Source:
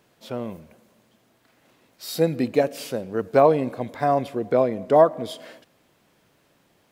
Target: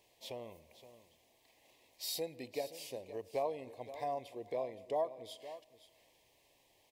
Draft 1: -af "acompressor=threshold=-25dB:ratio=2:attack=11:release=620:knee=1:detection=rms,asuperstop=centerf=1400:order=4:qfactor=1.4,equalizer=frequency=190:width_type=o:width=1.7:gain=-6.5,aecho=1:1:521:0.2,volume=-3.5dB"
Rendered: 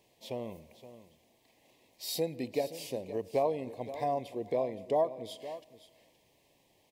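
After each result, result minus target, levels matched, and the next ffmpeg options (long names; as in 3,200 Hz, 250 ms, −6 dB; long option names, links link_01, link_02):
250 Hz band +4.0 dB; downward compressor: peak gain reduction −4 dB
-af "acompressor=threshold=-25dB:ratio=2:attack=11:release=620:knee=1:detection=rms,asuperstop=centerf=1400:order=4:qfactor=1.4,equalizer=frequency=190:width_type=o:width=1.7:gain=-17,aecho=1:1:521:0.2,volume=-3.5dB"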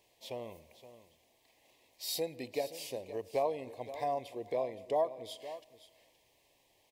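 downward compressor: peak gain reduction −4 dB
-af "acompressor=threshold=-33dB:ratio=2:attack=11:release=620:knee=1:detection=rms,asuperstop=centerf=1400:order=4:qfactor=1.4,equalizer=frequency=190:width_type=o:width=1.7:gain=-17,aecho=1:1:521:0.2,volume=-3.5dB"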